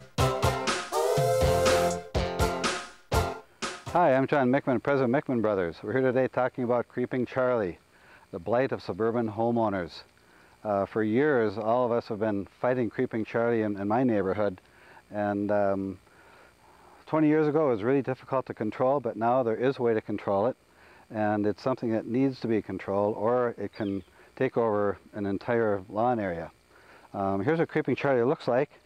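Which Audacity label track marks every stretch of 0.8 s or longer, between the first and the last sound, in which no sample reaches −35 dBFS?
15.930000	17.090000	silence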